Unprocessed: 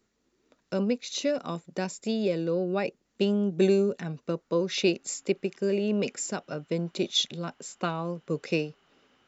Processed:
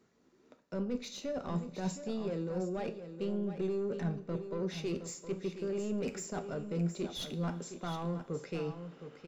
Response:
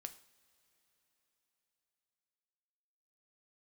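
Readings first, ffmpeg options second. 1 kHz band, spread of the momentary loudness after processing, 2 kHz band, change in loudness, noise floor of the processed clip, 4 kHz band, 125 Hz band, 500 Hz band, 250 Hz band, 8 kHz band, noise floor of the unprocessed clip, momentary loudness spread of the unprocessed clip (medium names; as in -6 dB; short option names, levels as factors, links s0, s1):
-6.5 dB, 5 LU, -12.0 dB, -8.5 dB, -68 dBFS, -14.0 dB, -3.5 dB, -9.0 dB, -7.5 dB, no reading, -75 dBFS, 9 LU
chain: -filter_complex "[0:a]highpass=f=180:p=1,aeval=exprs='0.224*(cos(1*acos(clip(val(0)/0.224,-1,1)))-cos(1*PI/2))+0.0398*(cos(2*acos(clip(val(0)/0.224,-1,1)))-cos(2*PI/2))':c=same,highshelf=f=2400:g=-9.5,areverse,acompressor=threshold=0.0112:ratio=6,areverse,asplit=2[s0][s1];[s1]highpass=f=720:p=1,volume=7.08,asoftclip=type=tanh:threshold=0.0422[s2];[s0][s2]amix=inputs=2:normalize=0,lowpass=f=1300:p=1,volume=0.501,bass=f=250:g=14,treble=f=4000:g=12,aecho=1:1:716:0.316[s3];[1:a]atrim=start_sample=2205,asetrate=48510,aresample=44100[s4];[s3][s4]afir=irnorm=-1:irlink=0,volume=1.58"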